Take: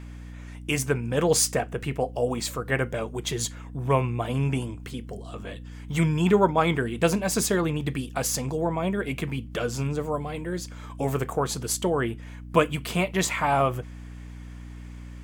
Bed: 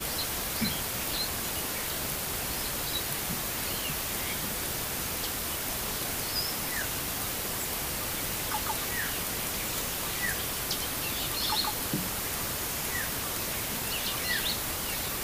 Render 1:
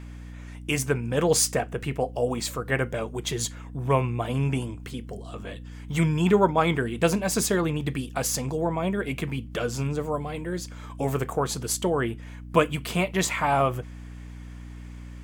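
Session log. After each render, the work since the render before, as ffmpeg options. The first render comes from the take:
-af anull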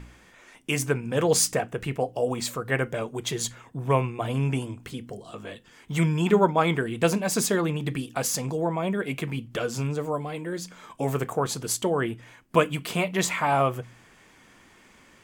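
-af "bandreject=f=60:t=h:w=4,bandreject=f=120:t=h:w=4,bandreject=f=180:t=h:w=4,bandreject=f=240:t=h:w=4,bandreject=f=300:t=h:w=4"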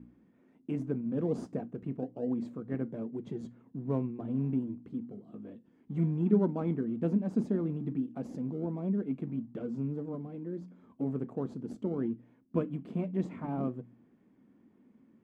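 -filter_complex "[0:a]asplit=2[a][b];[b]acrusher=samples=35:mix=1:aa=0.000001:lfo=1:lforange=35:lforate=1.2,volume=-10.5dB[c];[a][c]amix=inputs=2:normalize=0,bandpass=f=240:t=q:w=2.9:csg=0"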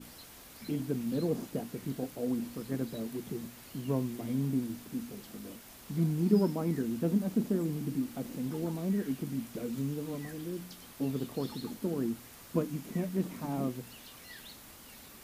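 -filter_complex "[1:a]volume=-19.5dB[a];[0:a][a]amix=inputs=2:normalize=0"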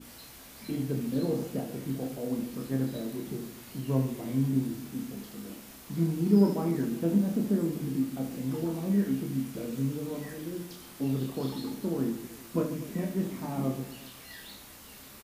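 -filter_complex "[0:a]asplit=2[a][b];[b]adelay=15,volume=-12dB[c];[a][c]amix=inputs=2:normalize=0,aecho=1:1:30|75|142.5|243.8|395.6:0.631|0.398|0.251|0.158|0.1"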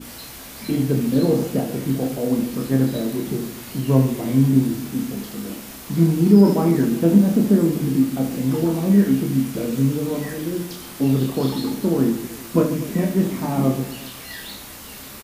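-af "volume=11.5dB,alimiter=limit=-3dB:level=0:latency=1"

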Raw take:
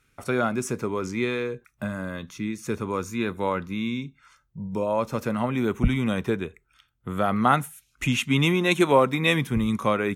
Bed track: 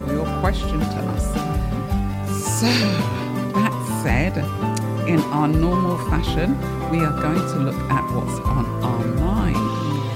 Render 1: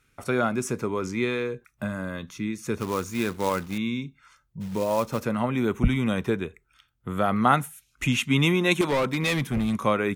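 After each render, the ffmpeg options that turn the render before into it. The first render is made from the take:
-filter_complex "[0:a]asettb=1/sr,asplit=3[a][b][c];[a]atrim=end=2.794[d];[b]atrim=start=2.79:end=3.78,asetpts=PTS-STARTPTS,afade=t=in:d=0.004:c=qsin,afade=t=out:st=0.986:d=0.004:c=qsin,acrusher=bits=3:mode=log:mix=0:aa=0.000001[e];[c]atrim=start=3.776[f];[d][e]acrossfade=d=0.004:c1=hsin:c2=qsin[g];[g][f]acrossfade=d=0.004:c1=qsin:c2=hsin,asplit=3[h][i][j];[h]afade=t=out:st=4.6:d=0.02[k];[i]acrusher=bits=4:mode=log:mix=0:aa=0.000001,afade=t=in:st=4.6:d=0.02,afade=t=out:st=5.19:d=0.02[l];[j]afade=t=in:st=5.19:d=0.02[m];[k][l][m]amix=inputs=3:normalize=0,asettb=1/sr,asplit=3[n][o][p];[n]atrim=end=8.814[q];[o]atrim=start=8.81:end=9.85,asetpts=PTS-STARTPTS,afade=t=in:d=0.004:c=qsin,afade=t=out:st=1.036:d=0.004:c=qsin,volume=20.5dB,asoftclip=hard,volume=-20.5dB[r];[p]atrim=start=9.846[s];[q][r]acrossfade=d=0.004:c1=hsin:c2=qsin[t];[t][s]acrossfade=d=0.004:c1=qsin:c2=hsin"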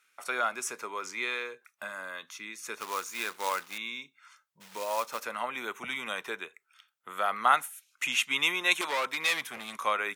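-af "highpass=930"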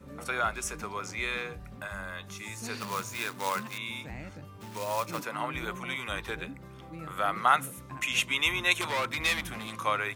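-filter_complex "[1:a]volume=-23dB[a];[0:a][a]amix=inputs=2:normalize=0"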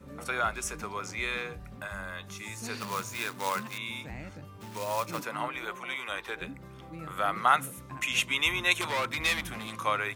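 -filter_complex "[0:a]asettb=1/sr,asplit=3[a][b][c];[a]atrim=end=5.484[d];[b]atrim=start=5.48:end=6.41,asetpts=PTS-STARTPTS,afade=t=in:d=0.004:c=qsin,afade=t=out:st=0.926:d=0.004:c=qsin,bass=f=250:g=-15,treble=f=4k:g=-3[e];[c]atrim=start=6.406[f];[d][e]acrossfade=d=0.004:c1=hsin:c2=qsin[g];[g][f]acrossfade=d=0.004:c1=qsin:c2=hsin"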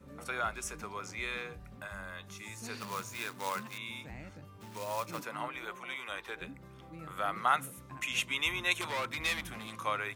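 -af "volume=-5dB"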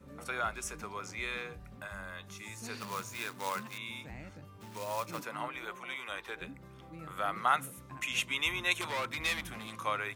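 -af anull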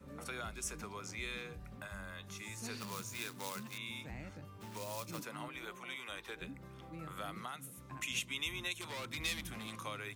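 -filter_complex "[0:a]alimiter=limit=-21.5dB:level=0:latency=1:release=461,acrossover=split=380|3000[a][b][c];[b]acompressor=threshold=-48dB:ratio=3[d];[a][d][c]amix=inputs=3:normalize=0"

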